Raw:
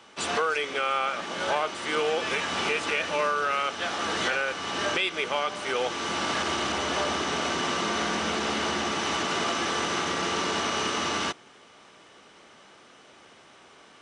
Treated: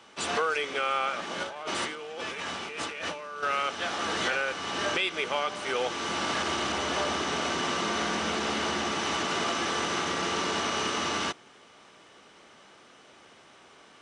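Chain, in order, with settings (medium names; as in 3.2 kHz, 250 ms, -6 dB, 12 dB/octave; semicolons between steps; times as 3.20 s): 1.43–3.43 s: compressor with a negative ratio -35 dBFS, ratio -1; trim -1.5 dB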